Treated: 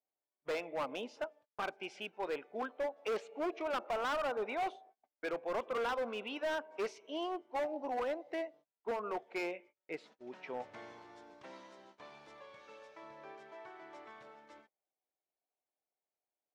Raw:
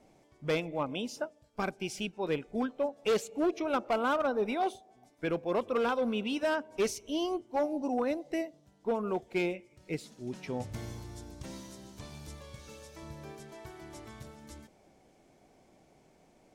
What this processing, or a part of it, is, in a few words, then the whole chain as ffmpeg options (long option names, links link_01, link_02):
walkie-talkie: -filter_complex "[0:a]asettb=1/sr,asplit=3[link_01][link_02][link_03];[link_01]atrim=end=0.724[link_04];[link_02]atrim=start=0.72:end=1.12,asetpts=PTS-STARTPTS,afade=type=in:duration=0.004:curve=qsin,afade=type=out:start_time=0.396:duration=0.004:curve=qsin,lowshelf=frequency=430:gain=5[link_05];[link_03]atrim=start=1.116[link_06];[link_04][link_05]acrossfade=duration=0.004:curve1=hsin:curve2=qsin[link_07];[link_07][link_06]acrossfade=duration=0.004:curve1=qsin:curve2=hsin,highpass=580,lowpass=2200,asoftclip=type=hard:threshold=-33dB,agate=range=-32dB:threshold=-59dB:ratio=16:detection=peak,volume=1dB"